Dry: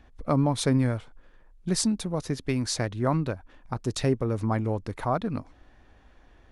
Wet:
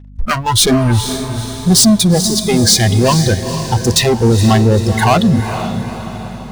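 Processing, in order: waveshaping leveller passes 5; spectral noise reduction 24 dB; hum 50 Hz, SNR 25 dB; in parallel at -6 dB: hard clipper -23.5 dBFS, distortion -7 dB; on the sum: echo that smears into a reverb 466 ms, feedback 51%, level -9 dB; trim +5.5 dB

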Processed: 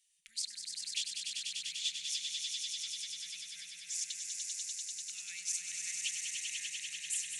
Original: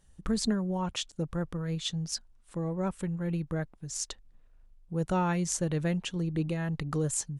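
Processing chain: peak limiter -24 dBFS, peak gain reduction 10 dB; elliptic high-pass 2.2 kHz, stop band 50 dB; echo with a slow build-up 98 ms, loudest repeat 5, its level -5 dB

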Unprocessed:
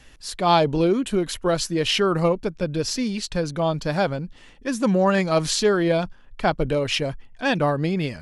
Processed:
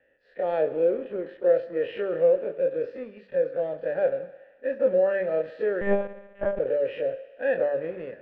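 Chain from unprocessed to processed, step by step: every event in the spectrogram widened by 60 ms; vowel filter e; resonant high shelf 1.9 kHz -6.5 dB, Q 1.5; de-hum 48.67 Hz, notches 11; in parallel at -4 dB: crossover distortion -40.5 dBFS; on the sum: distance through air 440 m; thinning echo 68 ms, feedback 78%, high-pass 360 Hz, level -16.5 dB; 5.81–6.59 s: monotone LPC vocoder at 8 kHz 200 Hz

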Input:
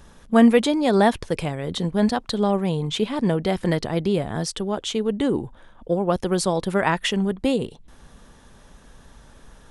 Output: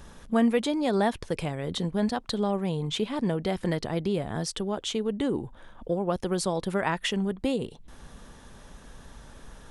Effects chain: compression 1.5:1, threshold -37 dBFS, peak gain reduction 10 dB; trim +1 dB

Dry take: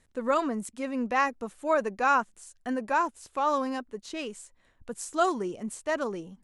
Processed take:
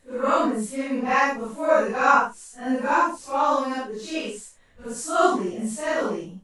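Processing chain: phase randomisation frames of 200 ms; trim +6 dB

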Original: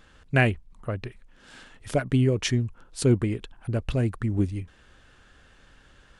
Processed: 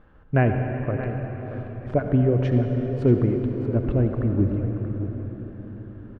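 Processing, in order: low-pass 1.1 kHz 12 dB/octave; delay 630 ms -12 dB; reverberation RT60 4.8 s, pre-delay 61 ms, DRR 4 dB; trim +2.5 dB

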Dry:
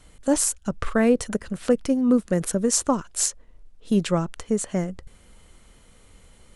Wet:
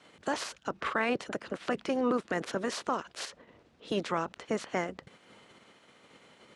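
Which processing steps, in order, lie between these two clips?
spectral peaks clipped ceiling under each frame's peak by 21 dB; peak limiter -13 dBFS, peak gain reduction 9 dB; band-pass 170–4000 Hz; trim -5.5 dB

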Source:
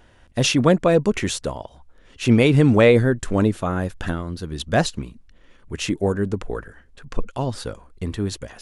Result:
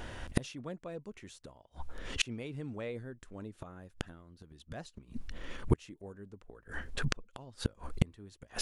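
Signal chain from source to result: inverted gate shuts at -22 dBFS, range -36 dB; trim +9.5 dB

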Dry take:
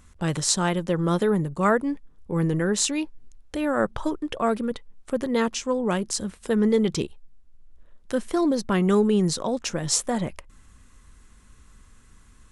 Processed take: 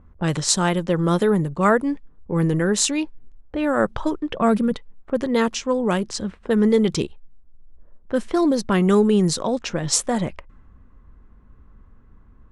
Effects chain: 4.34–4.74 s: peaking EQ 180 Hz +14.5 dB 0.43 oct; level-controlled noise filter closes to 850 Hz, open at -19.5 dBFS; trim +3.5 dB

